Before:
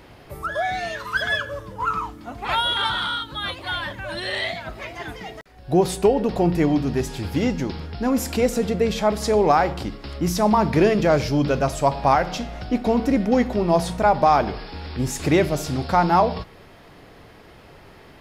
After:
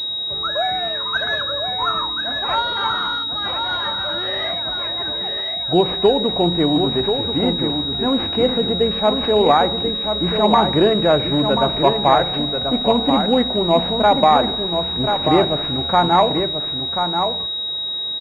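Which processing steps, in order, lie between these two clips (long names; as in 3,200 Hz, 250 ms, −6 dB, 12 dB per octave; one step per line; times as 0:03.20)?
low-shelf EQ 150 Hz −9.5 dB
single-tap delay 1,035 ms −6.5 dB
switching amplifier with a slow clock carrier 3,800 Hz
level +3.5 dB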